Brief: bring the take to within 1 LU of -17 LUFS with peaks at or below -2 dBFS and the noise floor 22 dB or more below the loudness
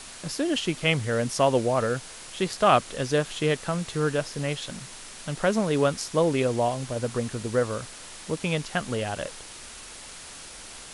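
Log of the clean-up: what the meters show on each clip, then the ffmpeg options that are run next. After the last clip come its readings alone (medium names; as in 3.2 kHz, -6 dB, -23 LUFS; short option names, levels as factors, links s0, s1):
noise floor -43 dBFS; noise floor target -49 dBFS; loudness -26.5 LUFS; peak level -6.5 dBFS; loudness target -17.0 LUFS
-> -af "afftdn=nr=6:nf=-43"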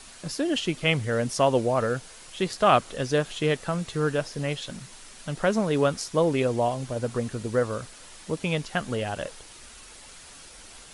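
noise floor -47 dBFS; noise floor target -49 dBFS
-> -af "afftdn=nr=6:nf=-47"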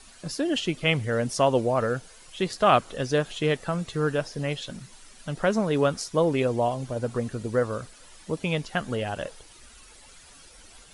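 noise floor -51 dBFS; loudness -26.5 LUFS; peak level -6.5 dBFS; loudness target -17.0 LUFS
-> -af "volume=2.99,alimiter=limit=0.794:level=0:latency=1"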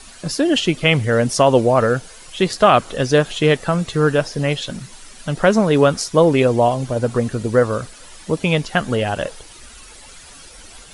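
loudness -17.5 LUFS; peak level -2.0 dBFS; noise floor -41 dBFS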